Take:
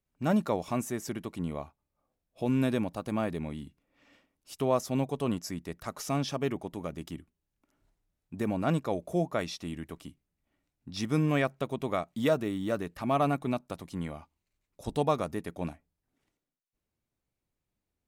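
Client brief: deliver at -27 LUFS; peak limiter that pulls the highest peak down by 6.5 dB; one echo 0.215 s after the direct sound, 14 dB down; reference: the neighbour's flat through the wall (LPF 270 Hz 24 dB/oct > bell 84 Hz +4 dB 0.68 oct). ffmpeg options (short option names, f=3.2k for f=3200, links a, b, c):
-af "alimiter=limit=-20dB:level=0:latency=1,lowpass=f=270:w=0.5412,lowpass=f=270:w=1.3066,equalizer=f=84:t=o:w=0.68:g=4,aecho=1:1:215:0.2,volume=9.5dB"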